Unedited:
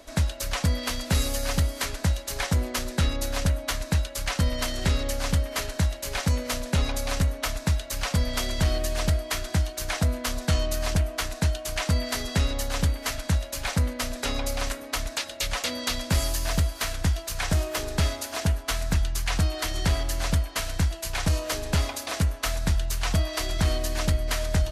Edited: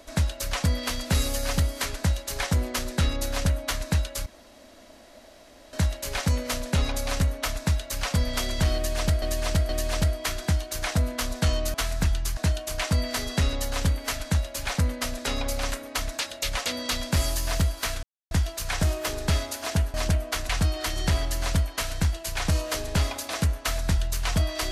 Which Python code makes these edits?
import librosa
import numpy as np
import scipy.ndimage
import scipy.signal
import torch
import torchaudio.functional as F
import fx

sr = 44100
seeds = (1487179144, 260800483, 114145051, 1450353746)

y = fx.edit(x, sr, fx.room_tone_fill(start_s=4.26, length_s=1.47),
    fx.repeat(start_s=8.75, length_s=0.47, count=3),
    fx.swap(start_s=10.8, length_s=0.55, other_s=18.64, other_length_s=0.63),
    fx.insert_silence(at_s=17.01, length_s=0.28), tone=tone)